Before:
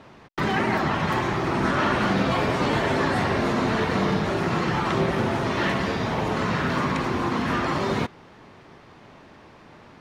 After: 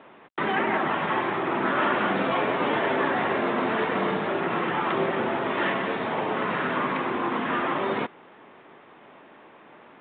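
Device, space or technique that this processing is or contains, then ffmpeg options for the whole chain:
telephone: -af "highpass=280,lowpass=3500" -ar 8000 -c:a pcm_mulaw

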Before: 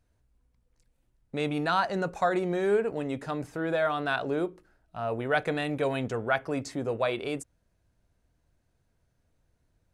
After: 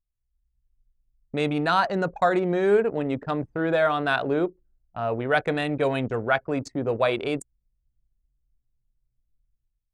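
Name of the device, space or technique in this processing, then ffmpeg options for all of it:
voice memo with heavy noise removal: -af "anlmdn=1.58,dynaudnorm=framelen=100:gausssize=9:maxgain=12dB,volume=-6dB"

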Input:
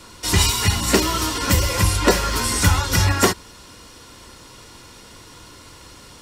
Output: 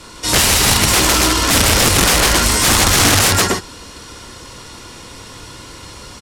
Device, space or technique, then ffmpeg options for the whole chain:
overflowing digital effects unit: -af "aecho=1:1:29.15|154.5|271.1:0.501|0.794|0.447,aeval=exprs='(mod(3.55*val(0)+1,2)-1)/3.55':channel_layout=same,lowpass=12000,volume=5dB"

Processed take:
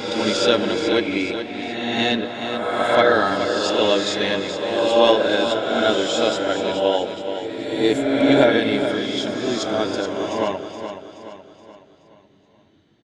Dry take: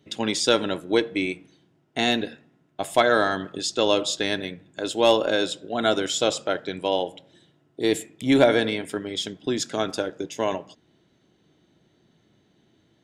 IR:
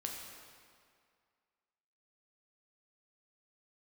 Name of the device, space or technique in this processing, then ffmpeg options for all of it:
reverse reverb: -filter_complex "[0:a]lowpass=5500,aecho=1:1:424|848|1272|1696|2120:0.355|0.163|0.0751|0.0345|0.0159,areverse[link_01];[1:a]atrim=start_sample=2205[link_02];[link_01][link_02]afir=irnorm=-1:irlink=0,areverse,volume=4dB"

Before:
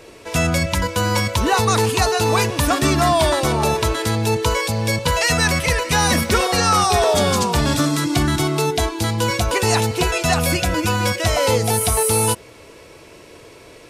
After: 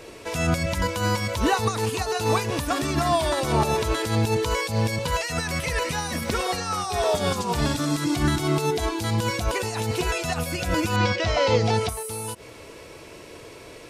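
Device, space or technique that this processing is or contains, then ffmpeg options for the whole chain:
de-esser from a sidechain: -filter_complex "[0:a]asettb=1/sr,asplit=3[link_01][link_02][link_03];[link_01]atrim=end=10.964[link_04];[link_02]atrim=start=10.96:end=11.89,asetpts=PTS-STARTPTS,afade=type=in:duration=0.004:curve=qsin,afade=type=out:start_time=0.926:duration=0.004:curve=qsin,lowpass=frequency=5400:width=0.5412,lowpass=frequency=5400:width=1.3066[link_05];[link_03]atrim=start=11.886[link_06];[link_04][link_05]acrossfade=duration=0.004:curve1=hsin:curve2=qsin[link_07];[link_07][link_06]acrossfade=duration=0.004:curve1=qsin:curve2=hsin,asplit=2[link_08][link_09];[link_09]highpass=frequency=4900:width=0.5412,highpass=frequency=4900:width=1.3066,apad=whole_len=612657[link_10];[link_08][link_10]sidechaincompress=threshold=-32dB:ratio=8:attack=1:release=93"

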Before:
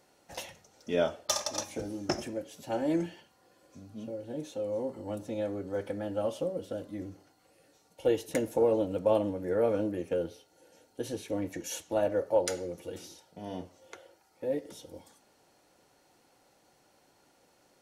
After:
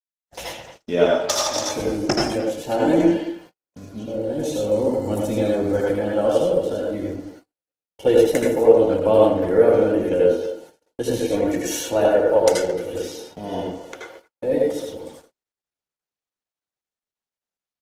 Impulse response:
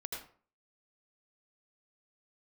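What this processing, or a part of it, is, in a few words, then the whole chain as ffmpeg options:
speakerphone in a meeting room: -filter_complex "[0:a]asettb=1/sr,asplit=3[link_01][link_02][link_03];[link_01]atrim=end=4.414[link_04];[link_02]atrim=start=4.41:end=5.85,asetpts=PTS-STARTPTS,afade=type=in:duration=0.004:curve=qsin,afade=type=out:start_time=1.436:duration=0.004:curve=qsin,bass=frequency=250:gain=5,treble=frequency=4000:gain=7[link_05];[link_03]atrim=start=5.846[link_06];[link_04][link_05]acrossfade=duration=0.004:curve1=hsin:curve2=qsin[link_07];[link_07][link_06]acrossfade=duration=0.004:curve1=qsin:curve2=hsin[link_08];[1:a]atrim=start_sample=2205[link_09];[link_08][link_09]afir=irnorm=-1:irlink=0,asplit=2[link_10][link_11];[link_11]adelay=220,highpass=300,lowpass=3400,asoftclip=type=hard:threshold=-21dB,volume=-12dB[link_12];[link_10][link_12]amix=inputs=2:normalize=0,dynaudnorm=framelen=230:gausssize=3:maxgain=13.5dB,agate=range=-49dB:threshold=-42dB:ratio=16:detection=peak" -ar 48000 -c:a libopus -b:a 16k

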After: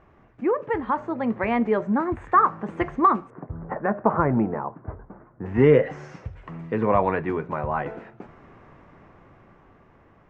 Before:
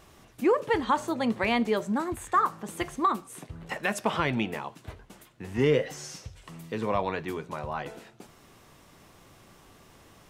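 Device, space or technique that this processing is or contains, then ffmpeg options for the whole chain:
action camera in a waterproof case: -filter_complex "[0:a]asettb=1/sr,asplit=3[link_01][link_02][link_03];[link_01]atrim=end=3.304[link_04];[link_02]atrim=start=3.3:end=5.46,asetpts=PTS-STARTPTS,afade=type=in:duration=0.004:curve=qsin,afade=type=out:start_time=2.156:duration=0.004:curve=qsin,lowpass=frequency=1400:width=0.5412,lowpass=frequency=1400:width=1.3066[link_05];[link_03]atrim=start=5.456[link_06];[link_04][link_05]acrossfade=duration=0.004:curve1=hsin:curve2=qsin[link_07];[link_07][link_06]acrossfade=duration=0.004:curve1=qsin:curve2=hsin,lowpass=frequency=2200:width=0.5412,lowpass=frequency=2200:width=1.3066,highshelf=frequency=5100:width_type=q:width=1.5:gain=13,dynaudnorm=framelen=320:gausssize=11:maxgain=8dB" -ar 48000 -c:a aac -b:a 128k

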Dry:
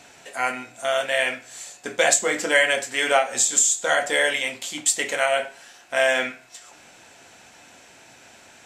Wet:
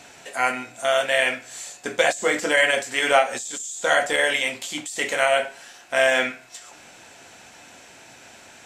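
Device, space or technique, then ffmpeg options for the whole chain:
de-esser from a sidechain: -filter_complex "[0:a]asplit=2[link_01][link_02];[link_02]highpass=frequency=5300:width=0.5412,highpass=frequency=5300:width=1.3066,apad=whole_len=381691[link_03];[link_01][link_03]sidechaincompress=threshold=-32dB:ratio=12:attack=0.92:release=26,volume=2.5dB"

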